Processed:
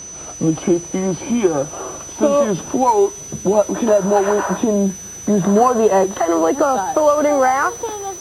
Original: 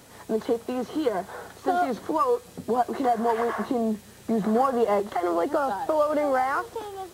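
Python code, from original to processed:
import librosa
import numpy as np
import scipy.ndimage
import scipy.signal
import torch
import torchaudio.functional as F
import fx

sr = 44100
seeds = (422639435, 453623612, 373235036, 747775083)

y = fx.speed_glide(x, sr, from_pct=71, to_pct=103)
y = y + 10.0 ** (-40.0 / 20.0) * np.sin(2.0 * np.pi * 6000.0 * np.arange(len(y)) / sr)
y = y * librosa.db_to_amplitude(9.0)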